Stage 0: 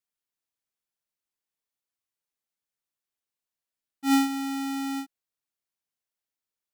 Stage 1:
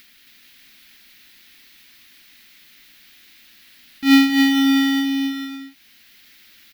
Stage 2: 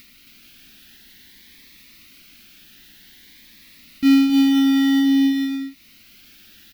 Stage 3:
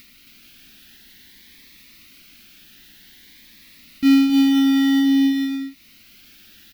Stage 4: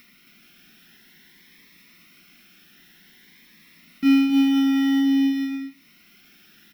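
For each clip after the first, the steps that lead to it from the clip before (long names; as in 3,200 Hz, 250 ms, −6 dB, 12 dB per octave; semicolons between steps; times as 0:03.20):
upward compression, threshold −35 dBFS; graphic EQ with 10 bands 125 Hz −9 dB, 250 Hz +7 dB, 500 Hz −12 dB, 1,000 Hz −10 dB, 2,000 Hz +8 dB, 4,000 Hz +7 dB, 8,000 Hz −12 dB; on a send: bouncing-ball delay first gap 270 ms, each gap 0.65×, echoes 5; on the sum: level +8 dB
downward compressor 5 to 1, threshold −20 dBFS, peak gain reduction 10.5 dB; low-shelf EQ 430 Hz +8.5 dB; phaser whose notches keep moving one way rising 0.52 Hz; level +2 dB
no processing that can be heard
convolution reverb RT60 0.25 s, pre-delay 3 ms, DRR 6.5 dB; level −7 dB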